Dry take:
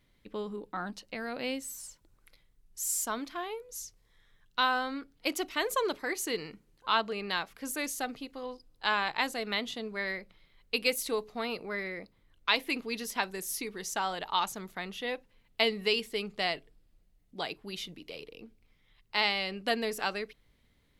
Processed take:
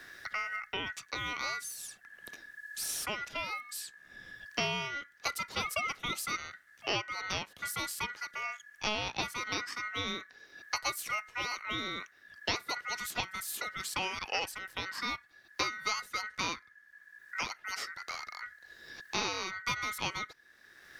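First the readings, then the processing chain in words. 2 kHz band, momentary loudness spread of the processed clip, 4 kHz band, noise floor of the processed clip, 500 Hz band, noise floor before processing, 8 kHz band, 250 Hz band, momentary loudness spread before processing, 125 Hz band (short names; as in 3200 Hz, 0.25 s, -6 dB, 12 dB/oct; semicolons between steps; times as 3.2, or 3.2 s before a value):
-1.0 dB, 12 LU, -2.5 dB, -62 dBFS, -9.0 dB, -69 dBFS, -2.0 dB, -8.0 dB, 13 LU, +2.5 dB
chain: ring modulator 1700 Hz; three-band squash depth 70%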